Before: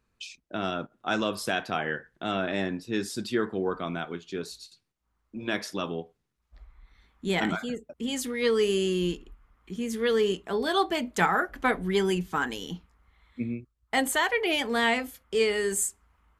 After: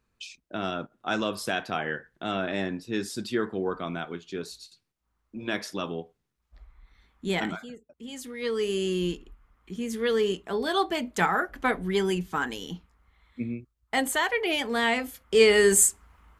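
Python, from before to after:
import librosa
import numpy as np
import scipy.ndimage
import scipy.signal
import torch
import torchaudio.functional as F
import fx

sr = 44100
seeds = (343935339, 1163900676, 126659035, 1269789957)

y = fx.gain(x, sr, db=fx.line((7.35, -0.5), (7.81, -12.0), (8.94, -0.5), (14.89, -0.5), (15.59, 8.5)))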